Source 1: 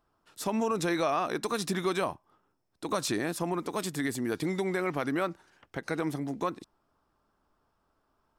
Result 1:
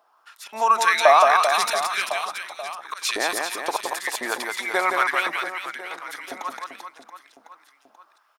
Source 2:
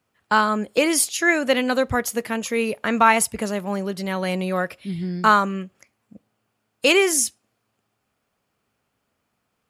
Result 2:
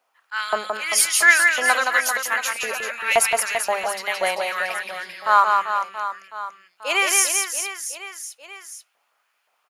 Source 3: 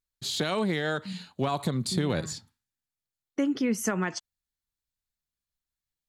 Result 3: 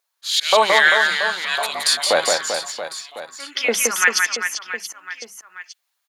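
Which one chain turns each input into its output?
auto swell 0.191 s; notch 7800 Hz, Q 15; LFO high-pass saw up 1.9 Hz 620–2900 Hz; notches 50/100/150/200 Hz; reverse bouncing-ball echo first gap 0.17 s, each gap 1.3×, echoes 5; normalise peaks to -1.5 dBFS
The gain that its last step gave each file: +9.5, +2.0, +14.5 dB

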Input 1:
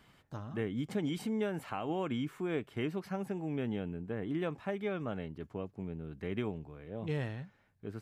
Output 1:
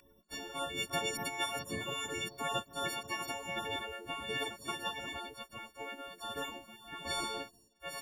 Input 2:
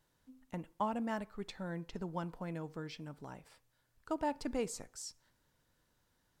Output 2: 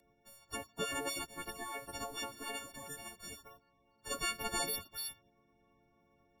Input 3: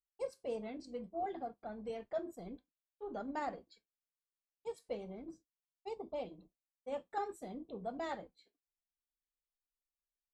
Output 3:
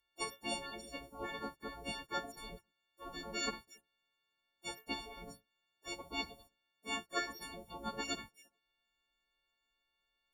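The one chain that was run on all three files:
frequency quantiser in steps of 4 st; spectral gate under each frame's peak -15 dB weak; gain +12 dB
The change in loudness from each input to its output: -0.5, +1.0, +1.5 LU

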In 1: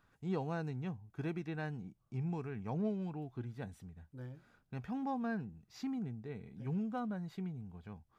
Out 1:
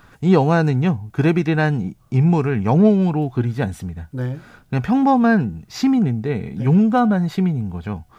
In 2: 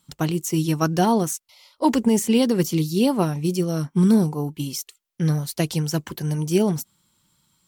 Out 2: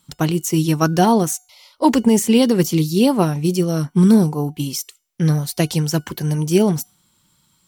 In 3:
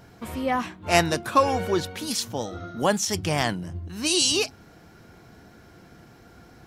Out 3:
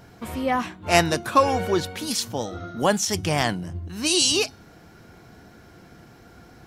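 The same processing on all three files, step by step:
resonator 730 Hz, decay 0.46 s, mix 40%; normalise peaks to -3 dBFS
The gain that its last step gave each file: +27.0, +9.0, +6.0 dB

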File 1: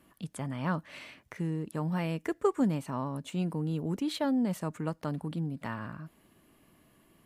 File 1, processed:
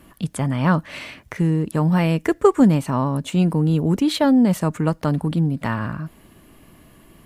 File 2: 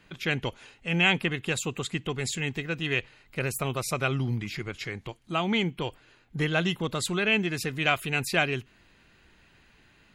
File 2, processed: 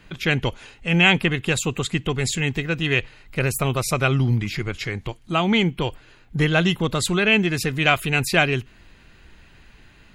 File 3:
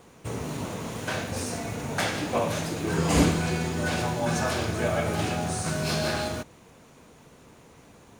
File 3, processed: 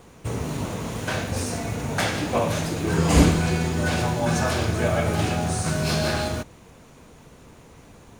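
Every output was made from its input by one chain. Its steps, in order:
low shelf 74 Hz +11 dB; normalise peaks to -2 dBFS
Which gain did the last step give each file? +12.5, +6.5, +2.5 dB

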